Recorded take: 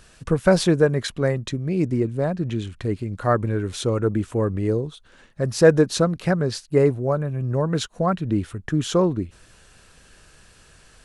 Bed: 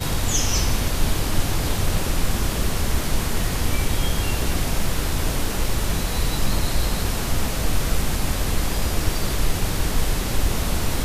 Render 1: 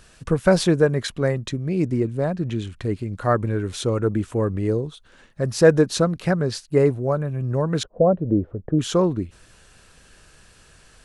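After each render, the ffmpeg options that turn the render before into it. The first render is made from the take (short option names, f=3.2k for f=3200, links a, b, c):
-filter_complex "[0:a]asettb=1/sr,asplit=3[a][b][c];[a]atrim=end=7.834[d];[b]atrim=start=7.83:end=8.79,asetpts=PTS-STARTPTS,afade=t=in:d=0.004:c=qsin,afade=t=out:st=0.956:d=0.004:c=qsin,lowpass=f=550:t=q:w=3.2[e];[c]atrim=start=8.786[f];[d][e]acrossfade=d=0.004:c1=hsin:c2=qsin[g];[g][f]acrossfade=d=0.004:c1=qsin:c2=hsin"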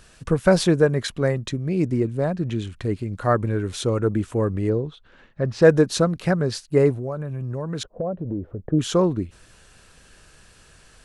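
-filter_complex "[0:a]asettb=1/sr,asplit=3[a][b][c];[a]atrim=end=4.694[d];[b]atrim=start=4.69:end=5.62,asetpts=PTS-STARTPTS,afade=t=in:d=0.004:c=qsin,afade=t=out:st=0.926:d=0.004:c=qsin,lowpass=3.4k[e];[c]atrim=start=5.616[f];[d][e]acrossfade=d=0.004:c1=hsin:c2=qsin[g];[g][f]acrossfade=d=0.004:c1=qsin:c2=hsin,asettb=1/sr,asplit=3[h][i][j];[h]atrim=end=6.954[k];[i]atrim=start=6.95:end=8.63,asetpts=PTS-STARTPTS,afade=t=in:d=0.004:c=qsin,afade=t=out:st=1.676:d=0.004:c=qsin,acompressor=threshold=-26dB:ratio=3:attack=3.2:release=140:knee=1:detection=peak[l];[j]atrim=start=8.626[m];[k][l]acrossfade=d=0.004:c1=hsin:c2=qsin[n];[n][m]acrossfade=d=0.004:c1=qsin:c2=hsin"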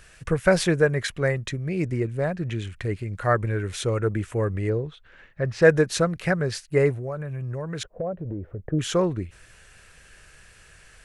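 -af "equalizer=f=250:t=o:w=1:g=-8,equalizer=f=1k:t=o:w=1:g=-4,equalizer=f=2k:t=o:w=1:g=7,equalizer=f=4k:t=o:w=1:g=-4"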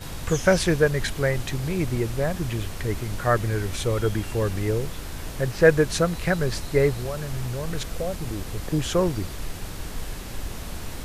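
-filter_complex "[1:a]volume=-11.5dB[a];[0:a][a]amix=inputs=2:normalize=0"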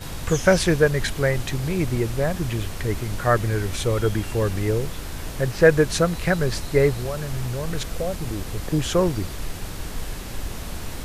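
-af "volume=2dB,alimiter=limit=-3dB:level=0:latency=1"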